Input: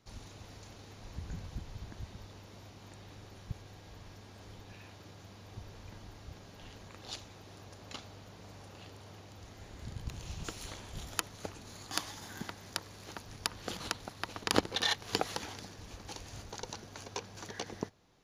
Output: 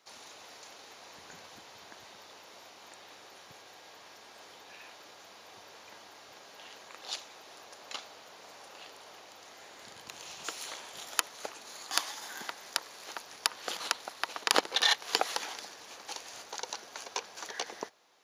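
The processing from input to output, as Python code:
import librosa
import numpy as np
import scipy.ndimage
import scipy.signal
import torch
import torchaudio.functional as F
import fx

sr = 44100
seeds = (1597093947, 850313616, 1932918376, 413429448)

y = scipy.signal.sosfilt(scipy.signal.butter(2, 590.0, 'highpass', fs=sr, output='sos'), x)
y = y * librosa.db_to_amplitude(5.5)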